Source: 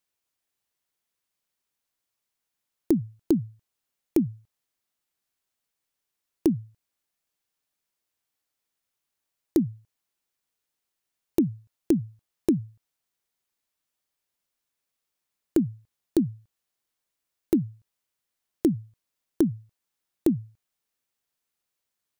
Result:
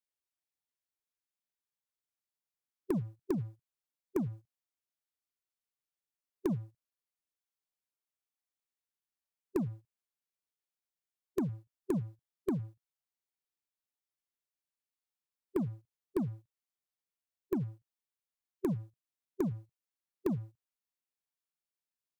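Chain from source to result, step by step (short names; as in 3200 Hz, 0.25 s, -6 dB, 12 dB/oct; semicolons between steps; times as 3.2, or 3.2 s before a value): harmonic-percussive split percussive -5 dB; sample leveller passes 2; formant shift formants +2 st; gain -7.5 dB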